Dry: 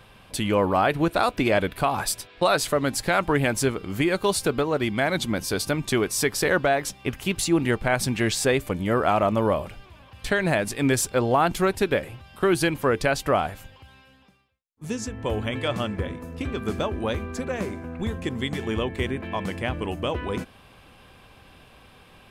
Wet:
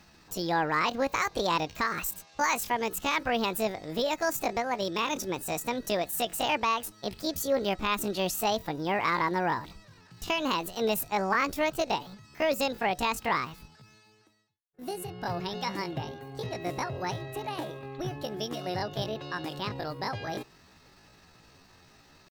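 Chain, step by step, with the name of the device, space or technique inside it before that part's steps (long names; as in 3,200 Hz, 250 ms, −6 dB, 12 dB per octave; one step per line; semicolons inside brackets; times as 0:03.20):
chipmunk voice (pitch shifter +8.5 semitones)
level −6 dB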